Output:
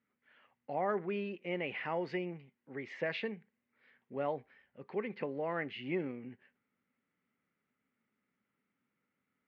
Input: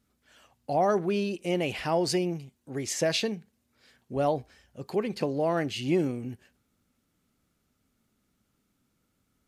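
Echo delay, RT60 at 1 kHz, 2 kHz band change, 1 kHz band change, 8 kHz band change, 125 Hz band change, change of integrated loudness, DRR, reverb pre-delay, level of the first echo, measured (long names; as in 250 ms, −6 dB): no echo audible, no reverb audible, −3.5 dB, −9.0 dB, below −35 dB, −12.5 dB, −9.5 dB, no reverb audible, no reverb audible, no echo audible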